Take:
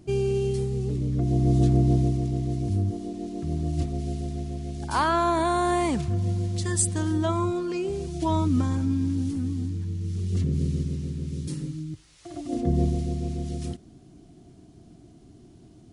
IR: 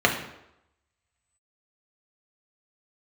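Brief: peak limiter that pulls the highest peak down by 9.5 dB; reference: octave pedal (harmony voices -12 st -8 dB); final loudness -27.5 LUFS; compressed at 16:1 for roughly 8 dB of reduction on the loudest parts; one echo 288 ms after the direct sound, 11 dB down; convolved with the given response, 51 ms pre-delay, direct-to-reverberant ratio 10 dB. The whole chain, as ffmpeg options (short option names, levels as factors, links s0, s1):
-filter_complex "[0:a]acompressor=threshold=0.0631:ratio=16,alimiter=level_in=1.12:limit=0.0631:level=0:latency=1,volume=0.891,aecho=1:1:288:0.282,asplit=2[s0][s1];[1:a]atrim=start_sample=2205,adelay=51[s2];[s1][s2]afir=irnorm=-1:irlink=0,volume=0.0398[s3];[s0][s3]amix=inputs=2:normalize=0,asplit=2[s4][s5];[s5]asetrate=22050,aresample=44100,atempo=2,volume=0.398[s6];[s4][s6]amix=inputs=2:normalize=0,volume=1.68"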